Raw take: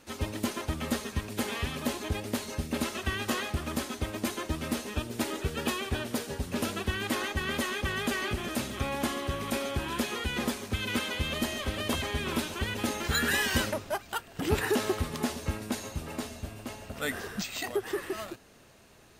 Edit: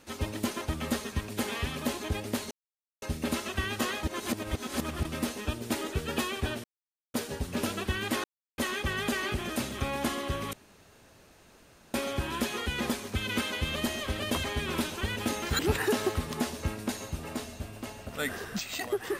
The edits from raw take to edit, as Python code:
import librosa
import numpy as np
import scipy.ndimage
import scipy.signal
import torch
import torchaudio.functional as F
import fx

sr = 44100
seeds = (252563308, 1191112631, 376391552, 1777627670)

y = fx.edit(x, sr, fx.insert_silence(at_s=2.51, length_s=0.51),
    fx.reverse_span(start_s=3.52, length_s=1.02),
    fx.insert_silence(at_s=6.13, length_s=0.5),
    fx.silence(start_s=7.23, length_s=0.34),
    fx.insert_room_tone(at_s=9.52, length_s=1.41),
    fx.cut(start_s=13.17, length_s=1.25), tone=tone)